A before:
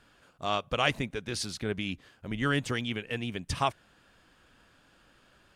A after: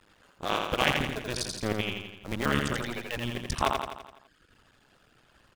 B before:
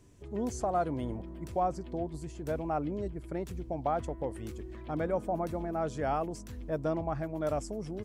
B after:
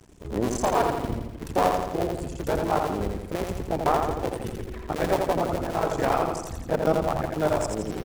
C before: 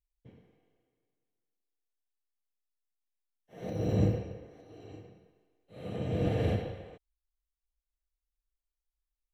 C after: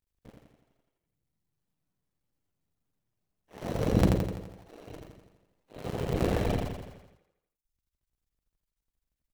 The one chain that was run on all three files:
cycle switcher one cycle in 2, muted; reverb removal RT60 1.1 s; feedback delay 84 ms, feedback 55%, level -4 dB; peak normalisation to -9 dBFS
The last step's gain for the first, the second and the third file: +3.5 dB, +10.5 dB, +6.0 dB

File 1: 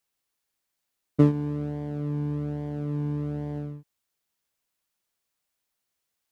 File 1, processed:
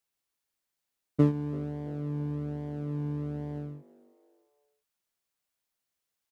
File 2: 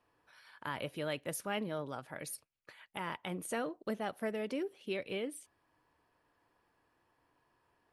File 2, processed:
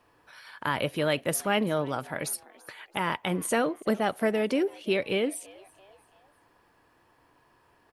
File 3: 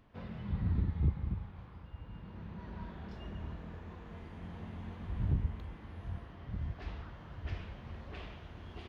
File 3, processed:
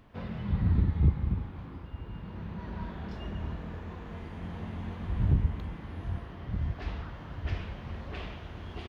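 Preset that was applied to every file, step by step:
frequency-shifting echo 335 ms, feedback 44%, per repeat +96 Hz, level -23 dB; peak normalisation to -12 dBFS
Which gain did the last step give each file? -4.0 dB, +11.0 dB, +6.5 dB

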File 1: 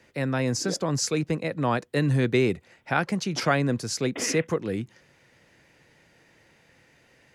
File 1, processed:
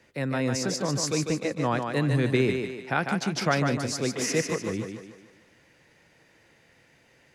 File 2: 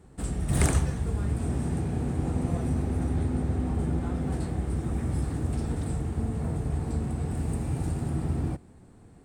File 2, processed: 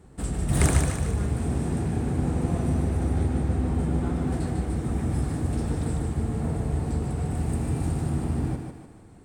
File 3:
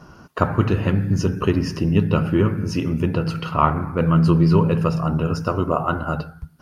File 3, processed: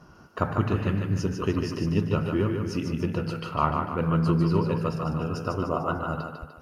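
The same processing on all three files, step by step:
thinning echo 149 ms, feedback 47%, high-pass 160 Hz, level -5 dB; normalise loudness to -27 LUFS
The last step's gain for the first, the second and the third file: -2.0 dB, +2.0 dB, -7.0 dB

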